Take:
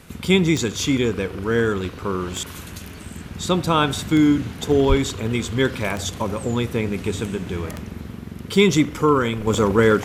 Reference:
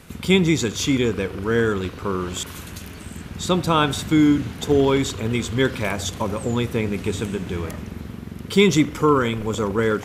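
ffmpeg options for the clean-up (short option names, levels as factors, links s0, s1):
-filter_complex "[0:a]adeclick=t=4,asplit=3[s0][s1][s2];[s0]afade=t=out:st=4.88:d=0.02[s3];[s1]highpass=f=140:w=0.5412,highpass=f=140:w=1.3066,afade=t=in:st=4.88:d=0.02,afade=t=out:st=5:d=0.02[s4];[s2]afade=t=in:st=5:d=0.02[s5];[s3][s4][s5]amix=inputs=3:normalize=0,asetnsamples=n=441:p=0,asendcmd='9.47 volume volume -5dB',volume=1"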